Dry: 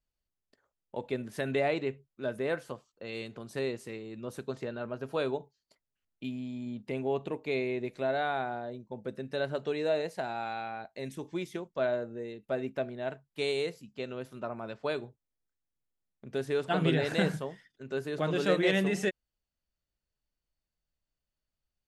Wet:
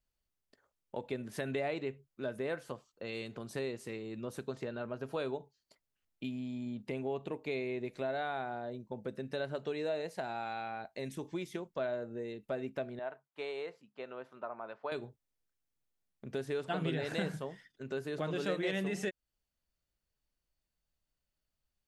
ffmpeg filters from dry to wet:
-filter_complex "[0:a]asettb=1/sr,asplit=3[s0][s1][s2];[s0]atrim=end=12.994[s3];[s1]atrim=start=12.99:end=14.92,asetpts=PTS-STARTPTS,afade=t=in:d=0.004:c=qsin,afade=t=out:st=1.926:d=0.004:c=qsin,bandpass=f=1000:t=q:w=1.1[s4];[s2]atrim=start=14.916[s5];[s3][s4]acrossfade=d=0.004:c1=hsin:c2=qsin[s6];[s6][s5]acrossfade=d=0.004:c1=qsin:c2=hsin,acompressor=threshold=0.0112:ratio=2,volume=1.12"

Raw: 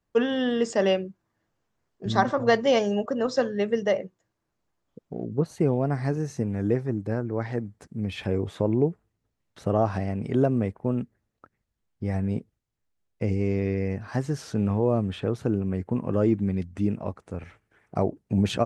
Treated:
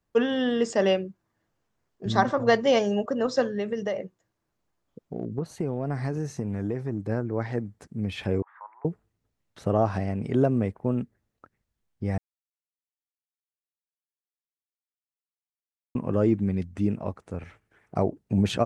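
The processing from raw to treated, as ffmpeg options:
-filter_complex "[0:a]asettb=1/sr,asplit=3[s0][s1][s2];[s0]atrim=end=3.514[s3];[s1]atrim=start=3.51:end=7.09,asetpts=PTS-STARTPTS,afade=t=in:d=0.004:c=qsin,afade=t=out:st=3.576:d=0.004:c=qsin,acompressor=threshold=0.0631:ratio=5:attack=3.2:release=140:knee=1:detection=peak[s4];[s2]atrim=start=7.086[s5];[s3][s4]acrossfade=d=0.004:c1=hsin:c2=qsin[s6];[s6][s5]acrossfade=d=0.004:c1=qsin:c2=hsin,asettb=1/sr,asplit=3[s7][s8][s9];[s7]atrim=end=8.424[s10];[s8]atrim=start=8.42:end=8.85,asetpts=PTS-STARTPTS,afade=t=in:d=0.004:c=qsin,afade=t=out:st=0.426:d=0.004:c=qsin,asuperpass=centerf=1300:order=8:qfactor=1.3[s11];[s9]atrim=start=8.846[s12];[s10][s11]acrossfade=d=0.004:c1=hsin:c2=qsin[s13];[s13][s12]acrossfade=d=0.004:c1=qsin:c2=hsin,asplit=3[s14][s15][s16];[s14]atrim=end=12.18,asetpts=PTS-STARTPTS,afade=t=out:st=12.176:d=0.004:c=hsin[s17];[s15]atrim=start=12.18:end=15.95,asetpts=PTS-STARTPTS,volume=0[s18];[s16]atrim=start=15.95,asetpts=PTS-STARTPTS,afade=t=in:d=0.004:c=hsin[s19];[s17][s18][s19]concat=n=3:v=0:a=1"

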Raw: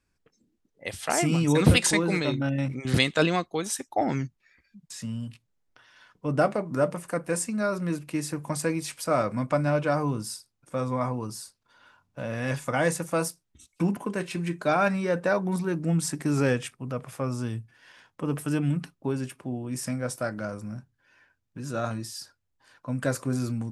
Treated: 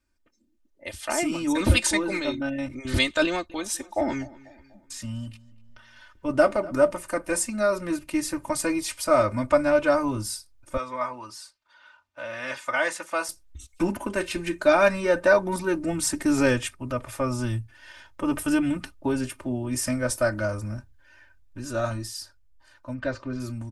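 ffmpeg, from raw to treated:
-filter_complex "[0:a]asettb=1/sr,asplit=3[s0][s1][s2];[s0]atrim=end=3.254[s3];[s1]atrim=start=3.25:end=6.87,asetpts=PTS-STARTPTS,afade=t=in:d=0.004:c=qsin,afade=t=out:st=3.616:d=0.004:c=qsin,asplit=2[s4][s5];[s5]adelay=245,lowpass=f=3500:p=1,volume=0.0944,asplit=2[s6][s7];[s7]adelay=245,lowpass=f=3500:p=1,volume=0.46,asplit=2[s8][s9];[s9]adelay=245,lowpass=f=3500:p=1,volume=0.46[s10];[s4][s6][s8][s10]amix=inputs=4:normalize=0,atrim=end_sample=159642[s11];[s2]atrim=start=6.866[s12];[s3][s11]acrossfade=d=0.004:c1=hsin:c2=qsin[s13];[s13][s12]acrossfade=d=0.004:c1=qsin:c2=hsin,asettb=1/sr,asplit=3[s14][s15][s16];[s14]atrim=end=10.774[s17];[s15]atrim=start=10.77:end=13.29,asetpts=PTS-STARTPTS,afade=t=in:d=0.004:c=qsin,afade=t=out:st=2.516:d=0.004:c=qsin,bandpass=f=2000:t=q:w=0.59[s18];[s16]atrim=start=13.286[s19];[s17][s18]acrossfade=d=0.004:c1=hsin:c2=qsin[s20];[s20][s19]acrossfade=d=0.004:c1=qsin:c2=hsin,asplit=3[s21][s22][s23];[s21]afade=t=out:st=22.93:d=0.02[s24];[s22]lowpass=f=4500:w=0.5412,lowpass=f=4500:w=1.3066,afade=t=in:st=22.93:d=0.02,afade=t=out:st=23.39:d=0.02[s25];[s23]afade=t=in:st=23.39:d=0.02[s26];[s24][s25][s26]amix=inputs=3:normalize=0,aecho=1:1:3.3:0.9,asubboost=boost=9.5:cutoff=63,dynaudnorm=f=500:g=11:m=2.66,volume=0.668"

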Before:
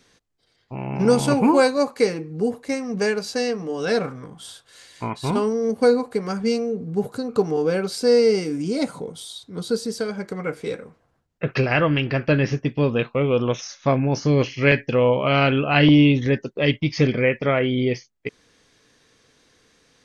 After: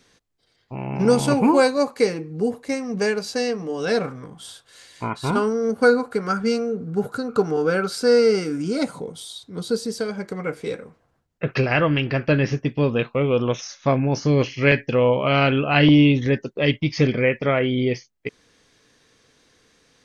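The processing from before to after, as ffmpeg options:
-filter_complex "[0:a]asettb=1/sr,asplit=3[s0][s1][s2];[s0]atrim=end=5.044[s3];[s1]atrim=start=5.04:end=8.83,asetpts=PTS-STARTPTS,afade=t=in:d=0.004:c=qsin,afade=t=out:st=3.786:d=0.004:c=qsin,equalizer=f=1400:t=o:w=0.29:g=14[s4];[s2]atrim=start=8.826[s5];[s3][s4]acrossfade=d=0.004:c1=hsin:c2=qsin[s6];[s6][s5]acrossfade=d=0.004:c1=qsin:c2=hsin"

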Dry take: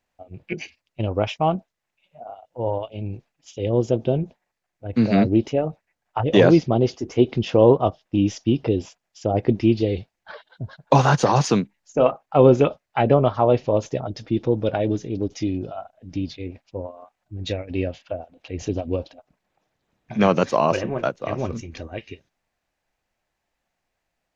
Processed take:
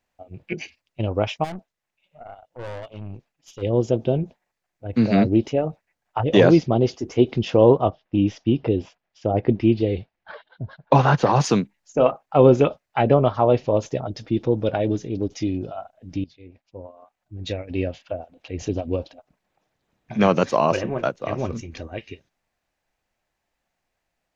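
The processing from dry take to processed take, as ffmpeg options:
-filter_complex "[0:a]asplit=3[s0][s1][s2];[s0]afade=t=out:st=1.43:d=0.02[s3];[s1]aeval=exprs='(tanh(35.5*val(0)+0.55)-tanh(0.55))/35.5':c=same,afade=t=in:st=1.43:d=0.02,afade=t=out:st=3.61:d=0.02[s4];[s2]afade=t=in:st=3.61:d=0.02[s5];[s3][s4][s5]amix=inputs=3:normalize=0,asettb=1/sr,asplit=3[s6][s7][s8];[s6]atrim=end=7.844[s9];[s7]atrim=start=7.84:end=11.4,asetpts=PTS-STARTPTS,afade=t=in:d=0.004:c=qsin,afade=t=out:st=3.556:d=0.004:c=qsin,lowpass=3400[s10];[s8]atrim=start=11.396[s11];[s9][s10]acrossfade=d=0.004:c1=hsin:c2=qsin[s12];[s12][s11]acrossfade=d=0.004:c1=qsin:c2=hsin,asplit=2[s13][s14];[s13]atrim=end=16.24,asetpts=PTS-STARTPTS,afade=t=out:st=16.236:d=0.004:c=hsin:silence=0.11885[s15];[s14]atrim=start=16.24,asetpts=PTS-STARTPTS,afade=t=in:d=1.58:silence=0.11885[s16];[s15][s16]concat=n=2:v=0:a=1"

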